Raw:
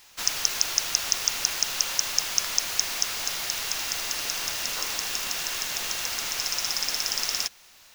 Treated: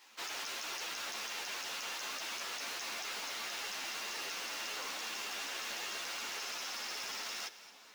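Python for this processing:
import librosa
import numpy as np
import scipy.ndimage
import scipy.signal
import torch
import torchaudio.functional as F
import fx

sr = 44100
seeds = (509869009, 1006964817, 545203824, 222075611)

p1 = scipy.signal.sosfilt(scipy.signal.butter(4, 230.0, 'highpass', fs=sr, output='sos'), x)
p2 = fx.high_shelf(p1, sr, hz=5600.0, db=-12.0)
p3 = fx.over_compress(p2, sr, threshold_db=-37.0, ratio=-1.0)
p4 = p2 + (p3 * librosa.db_to_amplitude(2.0))
p5 = 10.0 ** (-22.5 / 20.0) * np.tanh(p4 / 10.0 ** (-22.5 / 20.0))
p6 = p5 + fx.echo_split(p5, sr, split_hz=1100.0, low_ms=554, high_ms=217, feedback_pct=52, wet_db=-16, dry=0)
p7 = fx.ensemble(p6, sr)
y = p7 * librosa.db_to_amplitude(-8.0)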